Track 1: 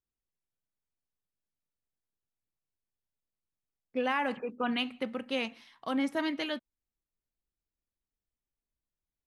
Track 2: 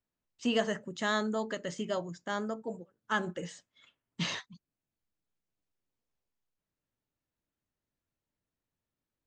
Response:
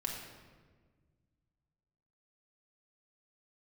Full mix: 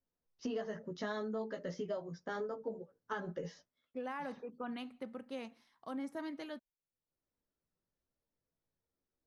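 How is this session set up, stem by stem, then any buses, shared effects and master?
-9.0 dB, 0.00 s, no send, gate with hold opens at -54 dBFS
+2.0 dB, 0.00 s, no send, elliptic low-pass 5.8 kHz, stop band 40 dB; peaking EQ 480 Hz +5.5 dB 0.58 oct; chorus voices 6, 0.3 Hz, delay 15 ms, depth 4.2 ms; auto duck -23 dB, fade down 0.30 s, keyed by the first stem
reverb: none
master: peaking EQ 2.8 kHz -10 dB 1.1 oct; compression 6:1, threshold -36 dBFS, peak gain reduction 11 dB

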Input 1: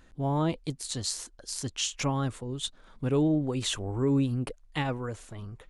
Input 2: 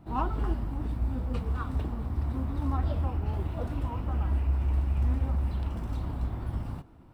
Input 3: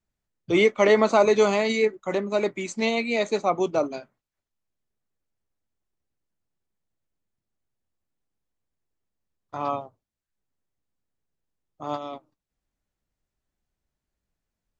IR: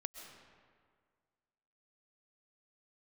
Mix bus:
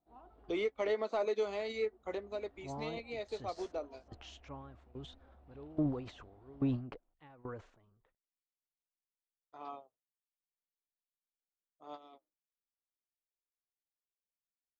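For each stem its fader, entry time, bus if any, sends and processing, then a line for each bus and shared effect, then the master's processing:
-2.5 dB, 2.45 s, no bus, no send, low-pass 6.3 kHz 24 dB/octave; transient shaper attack -2 dB, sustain +11 dB; sawtooth tremolo in dB decaying 1.2 Hz, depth 19 dB
-15.5 dB, 0.00 s, muted 0.94–1.45 s, bus A, no send, peaking EQ 710 Hz +9.5 dB 0.24 oct; peak limiter -23 dBFS, peak gain reduction 7.5 dB
2.08 s -5.5 dB -> 2.39 s -12 dB, 0.00 s, bus A, no send, treble shelf 4.5 kHz +8 dB; band-stop 570 Hz, Q 13
bus A: 0.0 dB, ten-band graphic EQ 125 Hz -9 dB, 500 Hz +5 dB, 1 kHz -4 dB, 4 kHz +8 dB; compression 2.5:1, threshold -34 dBFS, peak gain reduction 12 dB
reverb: none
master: treble shelf 2 kHz -8.5 dB; overdrive pedal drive 10 dB, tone 1.7 kHz, clips at -20 dBFS; upward expansion 1.5:1, over -58 dBFS

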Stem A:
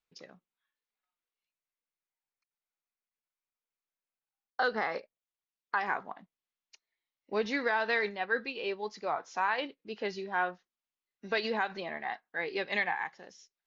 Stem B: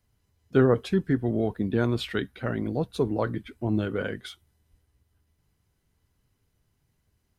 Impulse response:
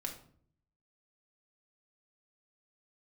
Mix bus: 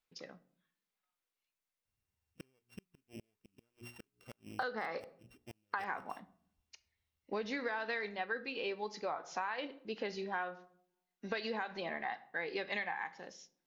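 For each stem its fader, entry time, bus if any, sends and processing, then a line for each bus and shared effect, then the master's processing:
-1.5 dB, 0.00 s, send -7.5 dB, none
-19.0 dB, 1.85 s, no send, sorted samples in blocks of 16 samples; hum notches 60/120/180/240/300/360/420 Hz; inverted gate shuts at -17 dBFS, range -37 dB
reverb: on, RT60 0.55 s, pre-delay 4 ms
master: compression 5:1, threshold -35 dBFS, peak gain reduction 11 dB

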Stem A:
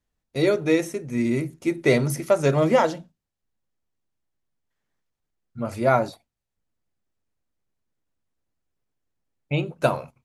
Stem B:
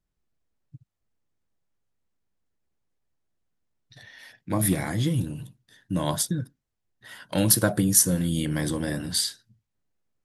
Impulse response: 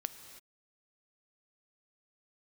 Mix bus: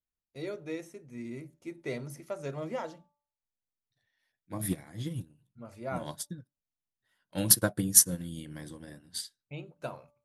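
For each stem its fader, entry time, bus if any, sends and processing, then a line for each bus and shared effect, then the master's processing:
-17.5 dB, 0.00 s, no send, de-hum 291 Hz, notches 4
+1.0 dB, 0.00 s, no send, upward expansion 2.5:1, over -36 dBFS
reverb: none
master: none

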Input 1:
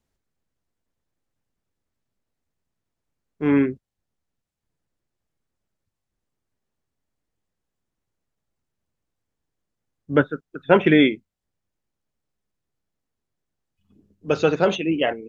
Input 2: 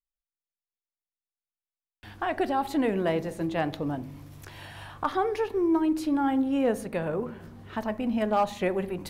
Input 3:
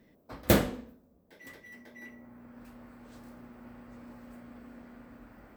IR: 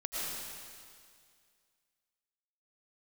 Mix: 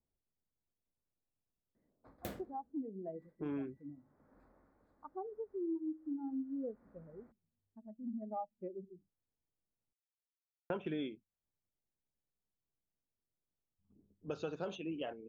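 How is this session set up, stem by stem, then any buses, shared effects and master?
-11.5 dB, 0.00 s, muted 9.93–10.70 s, no send, peaking EQ 2 kHz -14.5 dB 0.33 oct; level-controlled noise filter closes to 980 Hz, open at -16.5 dBFS
-4.5 dB, 0.00 s, no send, local Wiener filter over 41 samples; spectral contrast expander 2.5:1
2.42 s -15.5 dB -> 2.94 s -7 dB -> 4.22 s -7 dB -> 4.94 s -19 dB -> 5.94 s -19 dB -> 6.64 s -11.5 dB, 1.75 s, no send, local Wiener filter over 15 samples; hum notches 60/120/180/240 Hz; auto duck -18 dB, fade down 1.35 s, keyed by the first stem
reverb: none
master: compression 3:1, threshold -40 dBFS, peak gain reduction 14 dB

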